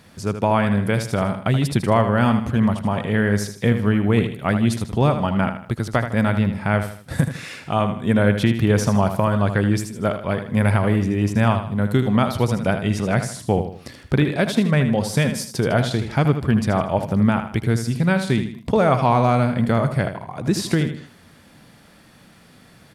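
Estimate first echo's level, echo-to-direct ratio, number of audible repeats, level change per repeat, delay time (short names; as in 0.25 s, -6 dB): -9.0 dB, -8.5 dB, 3, -8.5 dB, 78 ms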